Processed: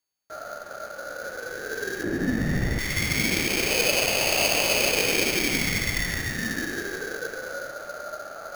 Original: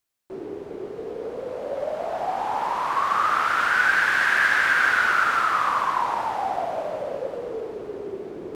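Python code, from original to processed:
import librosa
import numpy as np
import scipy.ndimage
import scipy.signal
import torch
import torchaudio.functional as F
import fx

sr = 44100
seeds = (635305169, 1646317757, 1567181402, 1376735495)

y = np.r_[np.sort(x[:len(x) // 8 * 8].reshape(-1, 8), axis=1).ravel(), x[len(x) // 8 * 8:]]
y = y * np.sin(2.0 * np.pi * 1000.0 * np.arange(len(y)) / sr)
y = fx.tilt_shelf(y, sr, db=8.5, hz=1200.0, at=(2.03, 2.79))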